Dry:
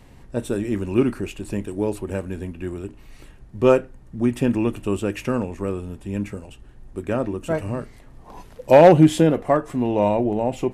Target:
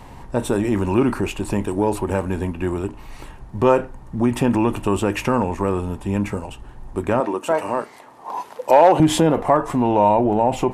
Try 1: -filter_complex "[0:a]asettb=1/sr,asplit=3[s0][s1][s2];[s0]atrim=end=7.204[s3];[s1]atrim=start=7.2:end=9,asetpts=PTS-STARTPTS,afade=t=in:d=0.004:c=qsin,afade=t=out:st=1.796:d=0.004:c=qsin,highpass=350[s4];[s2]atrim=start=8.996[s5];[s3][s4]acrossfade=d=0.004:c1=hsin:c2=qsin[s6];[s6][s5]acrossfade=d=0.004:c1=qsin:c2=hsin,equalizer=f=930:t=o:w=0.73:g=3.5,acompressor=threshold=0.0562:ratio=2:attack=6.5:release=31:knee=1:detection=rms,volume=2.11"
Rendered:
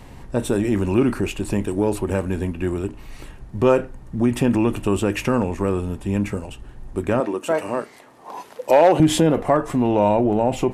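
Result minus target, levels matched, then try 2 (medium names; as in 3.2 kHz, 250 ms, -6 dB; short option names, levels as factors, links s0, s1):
1 kHz band -4.0 dB
-filter_complex "[0:a]asettb=1/sr,asplit=3[s0][s1][s2];[s0]atrim=end=7.204[s3];[s1]atrim=start=7.2:end=9,asetpts=PTS-STARTPTS,afade=t=in:d=0.004:c=qsin,afade=t=out:st=1.796:d=0.004:c=qsin,highpass=350[s4];[s2]atrim=start=8.996[s5];[s3][s4]acrossfade=d=0.004:c1=hsin:c2=qsin[s6];[s6][s5]acrossfade=d=0.004:c1=qsin:c2=hsin,equalizer=f=930:t=o:w=0.73:g=11.5,acompressor=threshold=0.0562:ratio=2:attack=6.5:release=31:knee=1:detection=rms,volume=2.11"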